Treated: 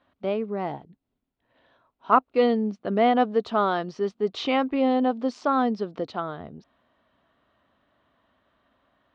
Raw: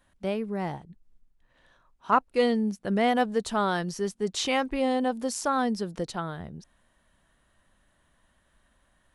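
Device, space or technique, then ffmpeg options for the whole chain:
guitar cabinet: -filter_complex "[0:a]asettb=1/sr,asplit=3[a][b][c];[a]atrim=end=0.674[d];[b]atrim=start=0.67:end=2.11,asetpts=PTS-STARTPTS,afade=t=in:d=0.004:c=qsin,afade=t=out:st=1.436:d=0.004:c=qsin,bandreject=f=1.2k:w=6.5[e];[c]atrim=start=2.106[f];[d][e]acrossfade=d=0.004:c1=hsin:c2=qsin[g];[g][f]acrossfade=d=0.004:c1=qsin:c2=hsin,highpass=100,equalizer=f=170:t=q:w=4:g=-5,equalizer=f=270:t=q:w=4:g=6,equalizer=f=430:t=q:w=4:g=4,equalizer=f=670:t=q:w=4:g=6,equalizer=f=1.2k:t=q:w=4:g=6,equalizer=f=1.7k:t=q:w=4:g=-4,lowpass=f=4.1k:w=0.5412,lowpass=f=4.1k:w=1.3066"

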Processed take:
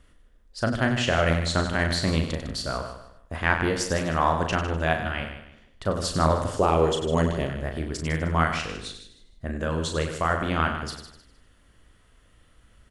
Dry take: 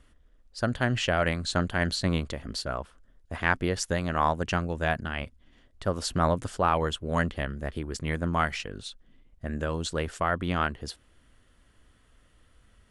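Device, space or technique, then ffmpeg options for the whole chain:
slapback doubling: -filter_complex "[0:a]asplit=3[a][b][c];[b]adelay=37,volume=-6.5dB[d];[c]adelay=96,volume=-9dB[e];[a][d][e]amix=inputs=3:normalize=0,asettb=1/sr,asplit=3[f][g][h];[f]atrim=end=6.564[i];[g]atrim=start=6.56:end=7.5,asetpts=PTS-STARTPTS,afade=t=in:d=0.004:c=qsin,afade=t=out:st=0.936:d=0.004:c=qsin,equalizer=f=400:t=o:w=0.67:g=9,equalizer=f=1.6k:t=o:w=0.67:g=-9,equalizer=f=6.3k:t=o:w=0.67:g=6[j];[h]atrim=start=7.496[k];[i][j]acrossfade=d=0.004:c1=hsin:c2=qsin[l];[l][k]acrossfade=d=0.004:c1=qsin:c2=hsin,aecho=1:1:154|308|462:0.282|0.0817|0.0237,volume=1.5dB"

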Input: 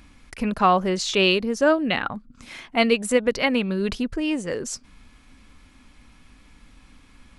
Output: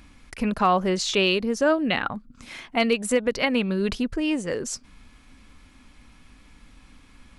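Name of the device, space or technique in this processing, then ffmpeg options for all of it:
clipper into limiter: -af "asoftclip=type=hard:threshold=-7.5dB,alimiter=limit=-10.5dB:level=0:latency=1:release=152"

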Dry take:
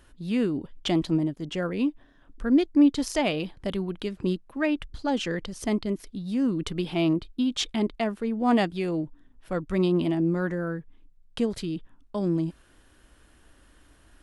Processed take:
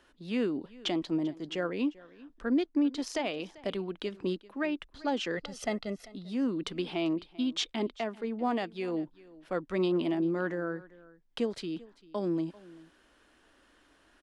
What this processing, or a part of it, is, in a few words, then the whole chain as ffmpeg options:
DJ mixer with the lows and highs turned down: -filter_complex "[0:a]acrossover=split=230 7000:gain=0.178 1 0.224[a][b][c];[a][b][c]amix=inputs=3:normalize=0,alimiter=limit=-18dB:level=0:latency=1:release=379,asettb=1/sr,asplit=3[d][e][f];[d]atrim=end=5.374[g];[e]atrim=start=5.37:end=6.06,asetpts=PTS-STARTPTS,afade=t=in:d=0.004:c=qsin,afade=t=out:st=0.686:d=0.004:c=qsin,aecho=1:1:1.5:0.77,atrim=end_sample=30429[h];[f]atrim=start=6.056[i];[g][h]acrossfade=d=0.004:c1=hsin:c2=qsin[j];[j][i]acrossfade=d=0.004:c1=qsin:c2=hsin,aecho=1:1:392:0.0891,volume=-2dB"

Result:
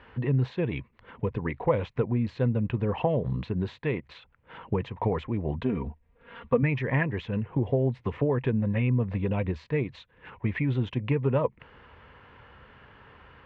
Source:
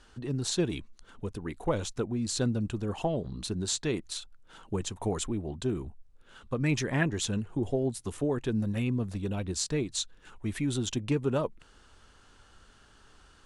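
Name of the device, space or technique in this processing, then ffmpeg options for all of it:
bass amplifier: -filter_complex "[0:a]highshelf=f=1.6k:t=q:w=1.5:g=8.5,acompressor=threshold=-32dB:ratio=3,highpass=66,equalizer=f=76:t=q:w=4:g=4,equalizer=f=130:t=q:w=4:g=7,equalizer=f=330:t=q:w=4:g=-4,equalizer=f=500:t=q:w=4:g=7,equalizer=f=990:t=q:w=4:g=9,equalizer=f=1.5k:t=q:w=4:g=-5,lowpass=f=2k:w=0.5412,lowpass=f=2k:w=1.3066,asettb=1/sr,asplit=3[a][b][c];[a]atrim=end=5.624[d];[b]atrim=start=5.62:end=6.63,asetpts=PTS-STARTPTS,afade=t=in:d=0.004:c=qsin,afade=t=out:st=1.006:d=0.004:c=qsin,aecho=1:1:4.3:0.72,atrim=end_sample=44541[e];[c]atrim=start=6.626[f];[d][e]acrossfade=d=0.004:c1=hsin:c2=qsin[g];[g][f]acrossfade=d=0.004:c1=qsin:c2=hsin,volume=7dB"

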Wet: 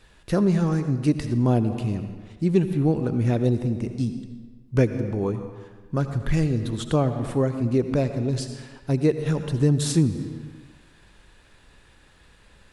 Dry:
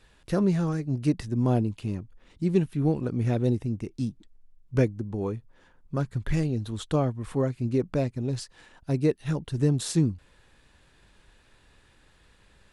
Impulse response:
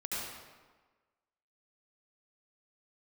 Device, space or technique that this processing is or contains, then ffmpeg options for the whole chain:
ducked reverb: -filter_complex "[0:a]asplit=3[a][b][c];[1:a]atrim=start_sample=2205[d];[b][d]afir=irnorm=-1:irlink=0[e];[c]apad=whole_len=561126[f];[e][f]sidechaincompress=threshold=-26dB:ratio=8:attack=16:release=213,volume=-8.5dB[g];[a][g]amix=inputs=2:normalize=0,volume=2.5dB"

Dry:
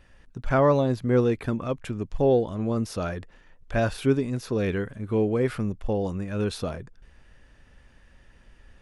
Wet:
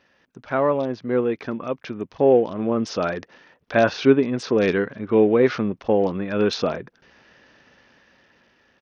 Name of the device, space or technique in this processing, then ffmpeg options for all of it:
Bluetooth headset: -af "highpass=230,dynaudnorm=f=830:g=5:m=10.5dB,aresample=16000,aresample=44100" -ar 48000 -c:a sbc -b:a 64k

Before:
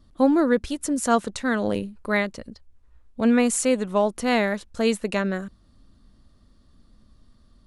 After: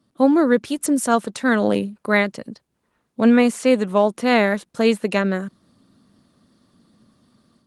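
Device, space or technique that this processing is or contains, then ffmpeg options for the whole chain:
video call: -filter_complex "[0:a]asettb=1/sr,asplit=3[a][b][c];[a]atrim=end=3.364[d];[b]atrim=start=3.36:end=5.02,asetpts=PTS-STARTPTS,afade=t=in:d=0.004:c=qsin,afade=t=out:st=1.656:d=0.004:c=qsin,acrossover=split=4800[e][f];[f]acompressor=threshold=-40dB:ratio=4:attack=1:release=60[g];[e][g]amix=inputs=2:normalize=0[h];[c]atrim=start=5.016[i];[d][h]acrossfade=d=0.004:c1=hsin:c2=qsin[j];[j][i]acrossfade=d=0.004:c1=qsin:c2=hsin,highpass=f=130:w=0.5412,highpass=f=130:w=1.3066,dynaudnorm=f=120:g=3:m=8dB,volume=-1.5dB" -ar 48000 -c:a libopus -b:a 24k

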